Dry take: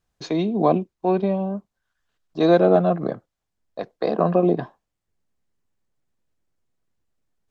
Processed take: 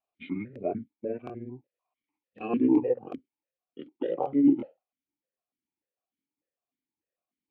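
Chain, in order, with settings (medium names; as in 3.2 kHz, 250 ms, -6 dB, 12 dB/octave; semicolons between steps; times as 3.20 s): pitch bend over the whole clip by -10 st ending unshifted; crackling interface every 0.37 s, samples 1024, repeat, from 0.51 s; stepped vowel filter 6.7 Hz; trim +3.5 dB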